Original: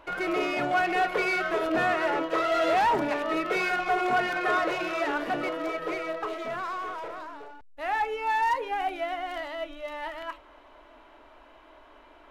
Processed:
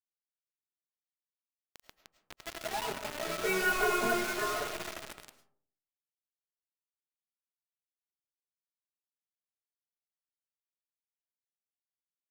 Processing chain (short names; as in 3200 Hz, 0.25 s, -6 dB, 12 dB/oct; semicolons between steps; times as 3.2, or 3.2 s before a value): Doppler pass-by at 3.84, 7 m/s, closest 1.4 m; low shelf 320 Hz +8 dB; notches 60/120/180/240/300/360/420/480/540 Hz; comb 4.8 ms, depth 99%; thinning echo 0.752 s, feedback 20%, high-pass 400 Hz, level -13 dB; flange 0.2 Hz, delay 5.4 ms, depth 9.3 ms, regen +39%; notch 1200 Hz, Q 28; bit-crush 6-bit; digital reverb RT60 0.56 s, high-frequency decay 0.35×, pre-delay 65 ms, DRR 11 dB